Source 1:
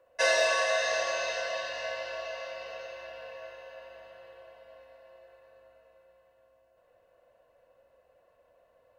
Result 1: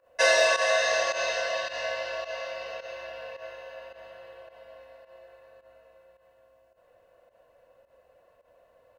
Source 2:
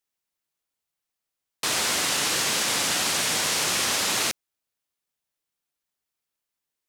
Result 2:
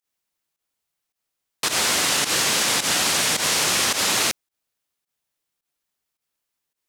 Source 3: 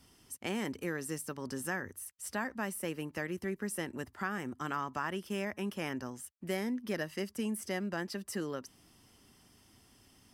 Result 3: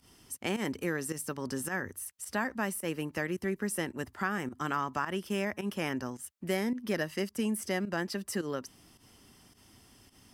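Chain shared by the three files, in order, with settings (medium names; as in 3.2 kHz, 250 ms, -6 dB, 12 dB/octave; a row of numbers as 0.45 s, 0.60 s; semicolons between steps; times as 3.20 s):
volume shaper 107 bpm, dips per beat 1, -14 dB, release 101 ms; trim +4 dB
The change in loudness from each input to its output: +4.0 LU, +3.5 LU, +3.5 LU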